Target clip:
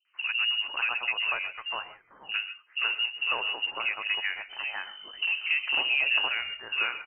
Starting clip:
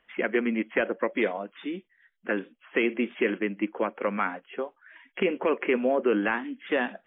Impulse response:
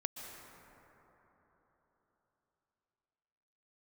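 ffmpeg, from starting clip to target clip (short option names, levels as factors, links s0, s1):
-filter_complex "[0:a]asplit=2[s0][s1];[s1]acrusher=samples=12:mix=1:aa=0.000001,volume=0.266[s2];[s0][s2]amix=inputs=2:normalize=0,asettb=1/sr,asplit=3[s3][s4][s5];[s3]atrim=end=4.494[s6];[s4]atrim=start=4.49:end=6,asetpts=PTS-STARTPTS,afade=t=in:d=0.004:c=qsin,afade=t=out:st=1.506:d=0.004:c=qsin,aeval=exprs='val(0)+0.00794*(sin(2*PI*50*n/s)+sin(2*PI*2*50*n/s)/2+sin(2*PI*3*50*n/s)/3+sin(2*PI*4*50*n/s)/4+sin(2*PI*5*50*n/s)/5)':c=same[s7];[s5]atrim=start=5.996[s8];[s6][s7]acrossfade=d=0.004:c1=hsin:c2=qsin[s9];[s9][s8]acrossfade=d=0.004:c1=qsin:c2=hsin,acrossover=split=370|1500[s10][s11][s12];[s11]adelay=50[s13];[s12]adelay=550[s14];[s10][s13][s14]amix=inputs=3:normalize=0[s15];[1:a]atrim=start_sample=2205,afade=t=out:st=0.19:d=0.01,atrim=end_sample=8820[s16];[s15][s16]afir=irnorm=-1:irlink=0,lowpass=f=2600:t=q:w=0.5098,lowpass=f=2600:t=q:w=0.6013,lowpass=f=2600:t=q:w=0.9,lowpass=f=2600:t=q:w=2.563,afreqshift=-3100"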